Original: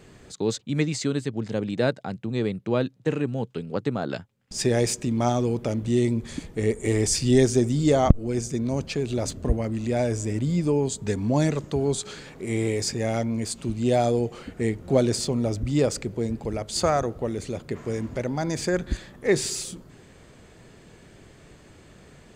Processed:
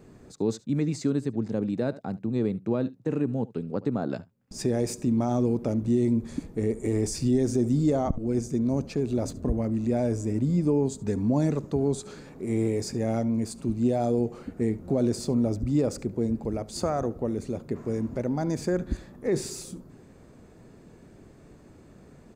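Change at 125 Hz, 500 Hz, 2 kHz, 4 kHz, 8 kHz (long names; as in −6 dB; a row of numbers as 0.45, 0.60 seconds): −2.5, −3.5, −10.5, −10.0, −8.5 decibels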